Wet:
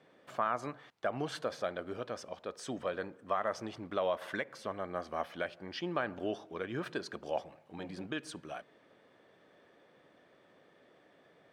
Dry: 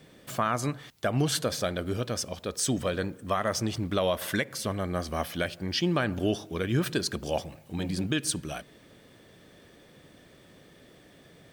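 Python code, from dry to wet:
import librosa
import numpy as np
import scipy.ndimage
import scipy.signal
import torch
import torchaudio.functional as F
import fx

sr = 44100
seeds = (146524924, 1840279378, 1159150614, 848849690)

y = fx.bandpass_q(x, sr, hz=890.0, q=0.75)
y = F.gain(torch.from_numpy(y), -3.5).numpy()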